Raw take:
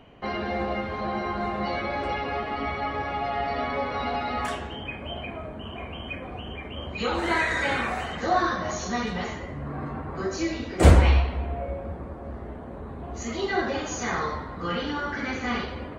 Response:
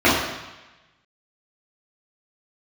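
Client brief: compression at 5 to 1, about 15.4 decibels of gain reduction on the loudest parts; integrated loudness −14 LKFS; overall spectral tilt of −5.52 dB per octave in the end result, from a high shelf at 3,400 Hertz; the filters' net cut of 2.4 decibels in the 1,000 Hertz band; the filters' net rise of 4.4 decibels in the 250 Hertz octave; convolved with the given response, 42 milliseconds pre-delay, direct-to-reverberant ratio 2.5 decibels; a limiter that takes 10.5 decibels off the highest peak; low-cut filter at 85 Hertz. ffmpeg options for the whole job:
-filter_complex "[0:a]highpass=85,equalizer=frequency=250:width_type=o:gain=6,equalizer=frequency=1000:width_type=o:gain=-3,highshelf=frequency=3400:gain=-8,acompressor=threshold=-28dB:ratio=5,alimiter=level_in=4dB:limit=-24dB:level=0:latency=1,volume=-4dB,asplit=2[link_01][link_02];[1:a]atrim=start_sample=2205,adelay=42[link_03];[link_02][link_03]afir=irnorm=-1:irlink=0,volume=-27.5dB[link_04];[link_01][link_04]amix=inputs=2:normalize=0,volume=19dB"

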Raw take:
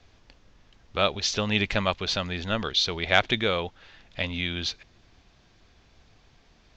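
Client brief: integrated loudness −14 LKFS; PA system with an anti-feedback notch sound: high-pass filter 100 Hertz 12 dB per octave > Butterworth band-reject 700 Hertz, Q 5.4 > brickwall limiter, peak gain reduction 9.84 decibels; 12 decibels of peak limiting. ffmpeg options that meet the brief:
ffmpeg -i in.wav -af "alimiter=limit=-15.5dB:level=0:latency=1,highpass=100,asuperstop=centerf=700:order=8:qfactor=5.4,volume=21.5dB,alimiter=limit=-2.5dB:level=0:latency=1" out.wav

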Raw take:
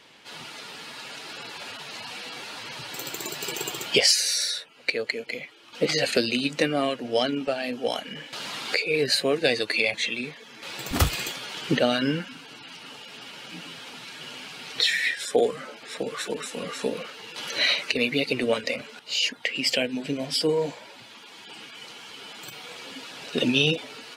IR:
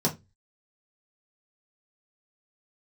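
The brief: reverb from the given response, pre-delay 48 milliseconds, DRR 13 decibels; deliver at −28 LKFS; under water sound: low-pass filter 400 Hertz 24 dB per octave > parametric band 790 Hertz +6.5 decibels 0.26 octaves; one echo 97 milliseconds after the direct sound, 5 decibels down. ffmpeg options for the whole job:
-filter_complex "[0:a]aecho=1:1:97:0.562,asplit=2[link_01][link_02];[1:a]atrim=start_sample=2205,adelay=48[link_03];[link_02][link_03]afir=irnorm=-1:irlink=0,volume=-23dB[link_04];[link_01][link_04]amix=inputs=2:normalize=0,lowpass=frequency=400:width=0.5412,lowpass=frequency=400:width=1.3066,equalizer=frequency=790:width_type=o:width=0.26:gain=6.5,volume=2dB"

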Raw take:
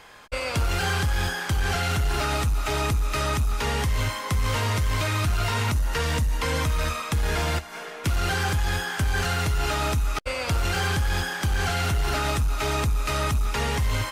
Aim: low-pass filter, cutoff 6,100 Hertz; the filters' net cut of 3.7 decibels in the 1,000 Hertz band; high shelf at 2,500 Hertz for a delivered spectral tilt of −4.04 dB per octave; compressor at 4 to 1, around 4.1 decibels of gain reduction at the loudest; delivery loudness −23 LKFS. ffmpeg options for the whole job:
ffmpeg -i in.wav -af "lowpass=6100,equalizer=frequency=1000:width_type=o:gain=-6,highshelf=frequency=2500:gain=4.5,acompressor=threshold=-25dB:ratio=4,volume=5.5dB" out.wav

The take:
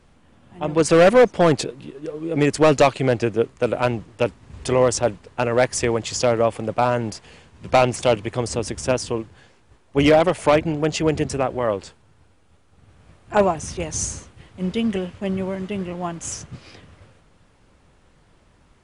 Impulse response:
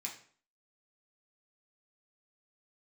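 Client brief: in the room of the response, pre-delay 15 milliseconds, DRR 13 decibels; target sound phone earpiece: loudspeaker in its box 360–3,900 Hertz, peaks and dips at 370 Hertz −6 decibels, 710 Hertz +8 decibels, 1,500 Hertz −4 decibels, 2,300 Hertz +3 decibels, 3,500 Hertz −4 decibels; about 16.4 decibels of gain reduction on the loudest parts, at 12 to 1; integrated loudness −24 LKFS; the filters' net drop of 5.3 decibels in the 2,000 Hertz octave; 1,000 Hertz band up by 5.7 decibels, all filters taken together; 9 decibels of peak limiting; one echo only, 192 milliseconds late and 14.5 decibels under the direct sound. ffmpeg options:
-filter_complex "[0:a]equalizer=frequency=1000:width_type=o:gain=3.5,equalizer=frequency=2000:width_type=o:gain=-7.5,acompressor=threshold=-26dB:ratio=12,alimiter=limit=-21.5dB:level=0:latency=1,aecho=1:1:192:0.188,asplit=2[link_01][link_02];[1:a]atrim=start_sample=2205,adelay=15[link_03];[link_02][link_03]afir=irnorm=-1:irlink=0,volume=-12dB[link_04];[link_01][link_04]amix=inputs=2:normalize=0,highpass=360,equalizer=frequency=370:width_type=q:width=4:gain=-6,equalizer=frequency=710:width_type=q:width=4:gain=8,equalizer=frequency=1500:width_type=q:width=4:gain=-4,equalizer=frequency=2300:width_type=q:width=4:gain=3,equalizer=frequency=3500:width_type=q:width=4:gain=-4,lowpass=frequency=3900:width=0.5412,lowpass=frequency=3900:width=1.3066,volume=10.5dB"

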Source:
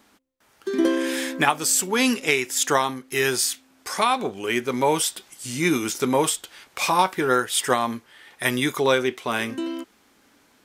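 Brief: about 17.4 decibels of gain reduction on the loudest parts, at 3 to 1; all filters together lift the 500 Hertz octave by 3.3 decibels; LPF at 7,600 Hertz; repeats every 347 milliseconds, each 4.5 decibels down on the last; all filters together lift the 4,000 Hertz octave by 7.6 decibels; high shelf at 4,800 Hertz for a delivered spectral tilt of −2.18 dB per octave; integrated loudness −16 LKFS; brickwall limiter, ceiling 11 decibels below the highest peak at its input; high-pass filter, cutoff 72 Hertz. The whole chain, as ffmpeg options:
ffmpeg -i in.wav -af "highpass=72,lowpass=7600,equalizer=frequency=500:width_type=o:gain=4,equalizer=frequency=4000:width_type=o:gain=6,highshelf=frequency=4800:gain=8,acompressor=threshold=-37dB:ratio=3,alimiter=level_in=1dB:limit=-24dB:level=0:latency=1,volume=-1dB,aecho=1:1:347|694|1041|1388|1735|2082|2429|2776|3123:0.596|0.357|0.214|0.129|0.0772|0.0463|0.0278|0.0167|0.01,volume=19dB" out.wav

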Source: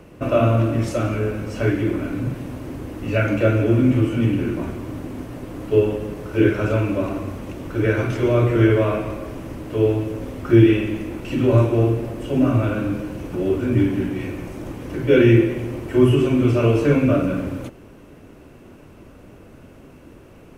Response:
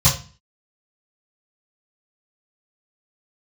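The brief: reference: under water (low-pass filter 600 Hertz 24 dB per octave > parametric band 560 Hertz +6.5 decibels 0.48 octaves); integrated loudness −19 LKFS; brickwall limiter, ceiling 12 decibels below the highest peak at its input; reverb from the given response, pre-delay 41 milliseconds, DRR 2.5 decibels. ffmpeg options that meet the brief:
-filter_complex "[0:a]alimiter=limit=-14.5dB:level=0:latency=1,asplit=2[link_01][link_02];[1:a]atrim=start_sample=2205,adelay=41[link_03];[link_02][link_03]afir=irnorm=-1:irlink=0,volume=-20.5dB[link_04];[link_01][link_04]amix=inputs=2:normalize=0,lowpass=frequency=600:width=0.5412,lowpass=frequency=600:width=1.3066,equalizer=frequency=560:width_type=o:width=0.48:gain=6.5,volume=-4.5dB"

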